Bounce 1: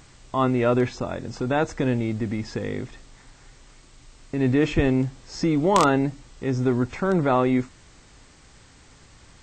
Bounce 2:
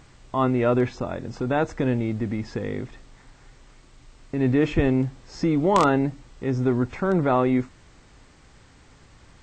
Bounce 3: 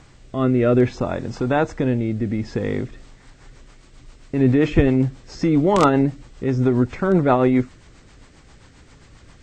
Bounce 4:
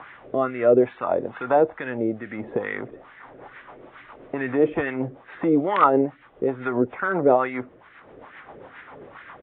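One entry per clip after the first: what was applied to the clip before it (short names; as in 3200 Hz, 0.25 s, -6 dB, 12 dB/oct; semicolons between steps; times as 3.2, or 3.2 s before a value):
high shelf 3900 Hz -8 dB
rotary speaker horn 0.6 Hz, later 7.5 Hz, at 2.56; gain +6 dB
LFO band-pass sine 2.3 Hz 450–1800 Hz; downsampling 8000 Hz; three-band squash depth 40%; gain +7 dB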